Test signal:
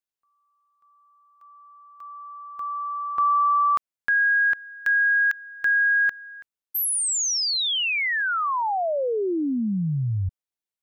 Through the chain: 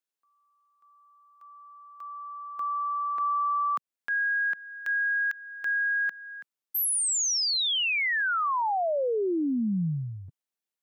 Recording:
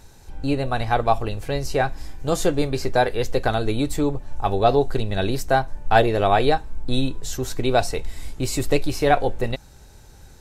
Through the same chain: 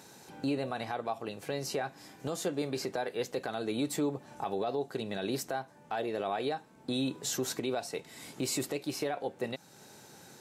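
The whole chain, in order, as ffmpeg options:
-af "highpass=f=160:w=0.5412,highpass=f=160:w=1.3066,acompressor=threshold=-23dB:ratio=5:attack=2:release=642:knee=1:detection=rms,alimiter=limit=-23.5dB:level=0:latency=1:release=47"

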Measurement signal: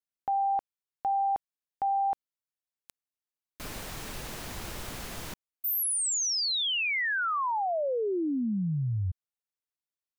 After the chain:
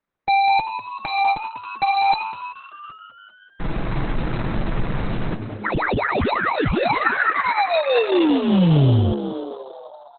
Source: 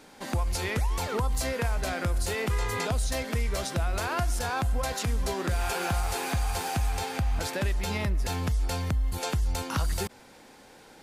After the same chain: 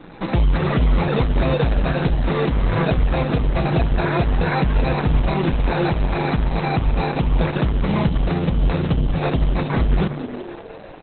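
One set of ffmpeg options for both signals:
-filter_complex "[0:a]lowshelf=f=300:g=10.5,aecho=1:1:6.1:0.8,bandreject=f=254.1:t=h:w=4,bandreject=f=508.2:t=h:w=4,bandreject=f=762.3:t=h:w=4,bandreject=f=1.0164k:t=h:w=4,acrossover=split=260|1300[a][b][c];[b]volume=19dB,asoftclip=hard,volume=-19dB[d];[a][d][c]amix=inputs=3:normalize=0,acrusher=samples=14:mix=1:aa=0.000001,aresample=16000,asoftclip=type=tanh:threshold=-21dB,aresample=44100,asplit=9[e][f][g][h][i][j][k][l][m];[f]adelay=194,afreqshift=100,volume=-10.5dB[n];[g]adelay=388,afreqshift=200,volume=-14.2dB[o];[h]adelay=582,afreqshift=300,volume=-18dB[p];[i]adelay=776,afreqshift=400,volume=-21.7dB[q];[j]adelay=970,afreqshift=500,volume=-25.5dB[r];[k]adelay=1164,afreqshift=600,volume=-29.2dB[s];[l]adelay=1358,afreqshift=700,volume=-33dB[t];[m]adelay=1552,afreqshift=800,volume=-36.7dB[u];[e][n][o][p][q][r][s][t][u]amix=inputs=9:normalize=0,volume=8.5dB" -ar 48000 -c:a libopus -b:a 8k

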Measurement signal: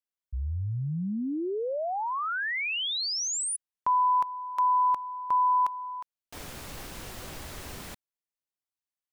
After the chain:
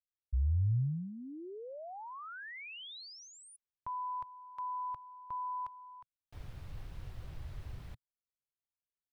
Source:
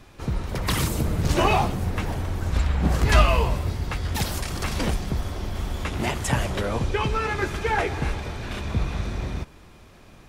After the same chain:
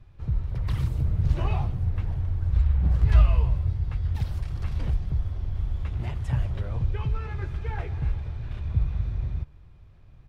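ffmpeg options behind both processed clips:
-af "firequalizer=gain_entry='entry(120,0);entry(210,-16);entry(3800,-19);entry(6900,-27)':delay=0.05:min_phase=1,volume=1.5dB"

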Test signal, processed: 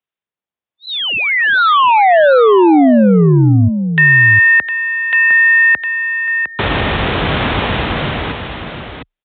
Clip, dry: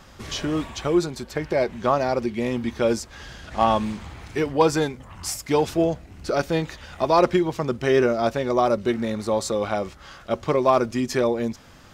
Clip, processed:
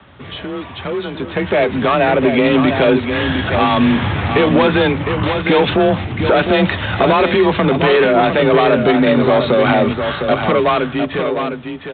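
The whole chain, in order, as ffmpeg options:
-filter_complex "[0:a]acrossover=split=460|1300[a][b][c];[a]acompressor=threshold=-29dB:ratio=4[d];[b]acompressor=threshold=-30dB:ratio=4[e];[c]acompressor=threshold=-25dB:ratio=4[f];[d][e][f]amix=inputs=3:normalize=0,aresample=8000,asoftclip=type=tanh:threshold=-25.5dB,aresample=44100,dynaudnorm=f=240:g=13:m=16.5dB,afreqshift=28,alimiter=limit=-9dB:level=0:latency=1:release=53,highpass=65,asplit=2[g][h];[h]aecho=0:1:707:0.447[i];[g][i]amix=inputs=2:normalize=0,volume=4.5dB"

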